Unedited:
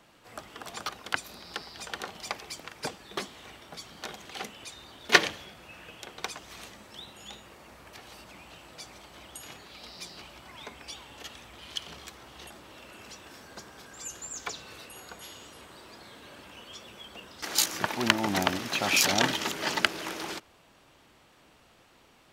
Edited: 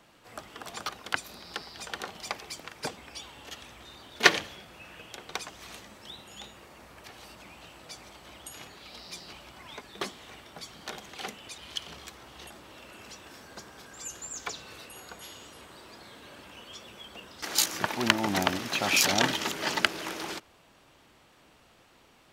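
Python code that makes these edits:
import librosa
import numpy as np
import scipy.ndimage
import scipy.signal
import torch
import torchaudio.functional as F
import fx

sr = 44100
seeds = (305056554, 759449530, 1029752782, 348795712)

y = fx.edit(x, sr, fx.swap(start_s=2.97, length_s=1.77, other_s=10.7, other_length_s=0.88), tone=tone)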